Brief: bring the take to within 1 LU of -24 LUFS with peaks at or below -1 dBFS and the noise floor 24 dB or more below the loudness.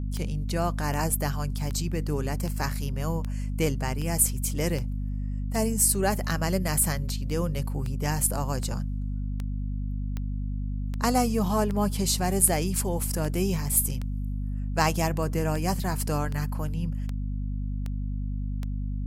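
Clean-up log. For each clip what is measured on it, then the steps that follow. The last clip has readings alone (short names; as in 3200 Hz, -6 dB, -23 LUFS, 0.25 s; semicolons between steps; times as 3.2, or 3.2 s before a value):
clicks 25; hum 50 Hz; harmonics up to 250 Hz; hum level -27 dBFS; loudness -27.5 LUFS; peak -6.5 dBFS; loudness target -24.0 LUFS
-> de-click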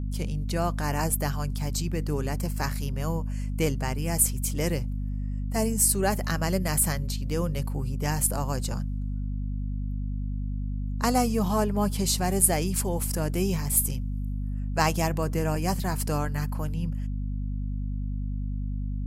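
clicks 0; hum 50 Hz; harmonics up to 250 Hz; hum level -27 dBFS
-> de-hum 50 Hz, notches 5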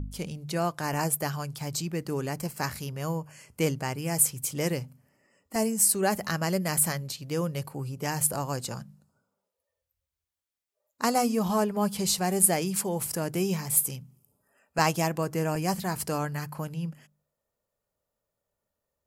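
hum none; loudness -28.0 LUFS; peak -7.0 dBFS; loudness target -24.0 LUFS
-> gain +4 dB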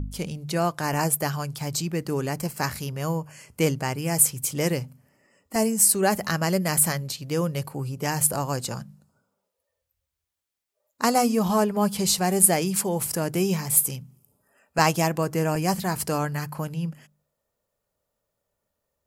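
loudness -24.0 LUFS; peak -3.0 dBFS; noise floor -82 dBFS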